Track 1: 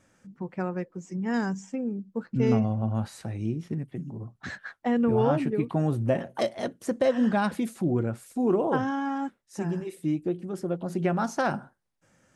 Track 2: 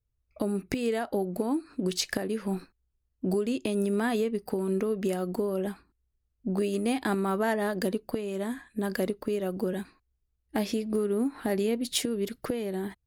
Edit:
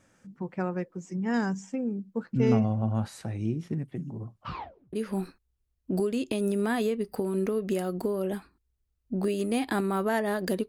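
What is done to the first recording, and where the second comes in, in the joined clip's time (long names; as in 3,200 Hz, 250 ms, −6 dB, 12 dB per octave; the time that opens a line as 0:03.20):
track 1
0:04.31: tape stop 0.62 s
0:04.93: continue with track 2 from 0:02.27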